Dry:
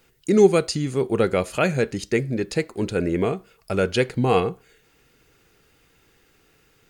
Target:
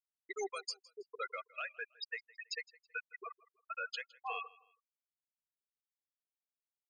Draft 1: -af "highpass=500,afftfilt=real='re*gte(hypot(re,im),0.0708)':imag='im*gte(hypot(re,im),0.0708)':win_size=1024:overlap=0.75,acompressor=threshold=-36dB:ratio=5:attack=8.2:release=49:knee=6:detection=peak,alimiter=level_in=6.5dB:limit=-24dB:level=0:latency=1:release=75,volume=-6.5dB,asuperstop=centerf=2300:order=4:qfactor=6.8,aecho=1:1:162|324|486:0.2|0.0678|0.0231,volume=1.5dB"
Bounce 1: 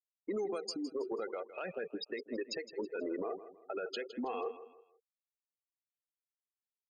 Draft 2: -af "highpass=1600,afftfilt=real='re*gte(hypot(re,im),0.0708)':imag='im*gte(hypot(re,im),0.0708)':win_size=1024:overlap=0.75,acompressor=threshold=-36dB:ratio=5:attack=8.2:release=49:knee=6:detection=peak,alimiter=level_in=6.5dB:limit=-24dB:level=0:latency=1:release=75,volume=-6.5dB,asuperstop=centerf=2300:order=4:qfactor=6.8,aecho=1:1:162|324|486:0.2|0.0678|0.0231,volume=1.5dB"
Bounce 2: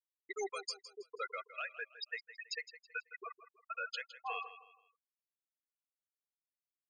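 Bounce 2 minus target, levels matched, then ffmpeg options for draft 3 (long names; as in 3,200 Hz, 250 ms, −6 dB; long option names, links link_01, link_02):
echo-to-direct +8.5 dB
-af "highpass=1600,afftfilt=real='re*gte(hypot(re,im),0.0708)':imag='im*gte(hypot(re,im),0.0708)':win_size=1024:overlap=0.75,acompressor=threshold=-36dB:ratio=5:attack=8.2:release=49:knee=6:detection=peak,alimiter=level_in=6.5dB:limit=-24dB:level=0:latency=1:release=75,volume=-6.5dB,asuperstop=centerf=2300:order=4:qfactor=6.8,aecho=1:1:162|324:0.075|0.0255,volume=1.5dB"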